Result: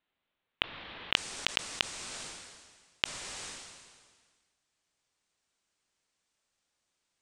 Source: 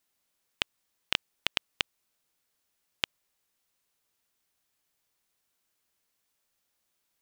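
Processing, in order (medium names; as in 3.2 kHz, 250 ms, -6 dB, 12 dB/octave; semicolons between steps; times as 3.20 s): steep low-pass 3.7 kHz 48 dB/octave, from 1.13 s 9 kHz; decay stretcher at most 36 dB/s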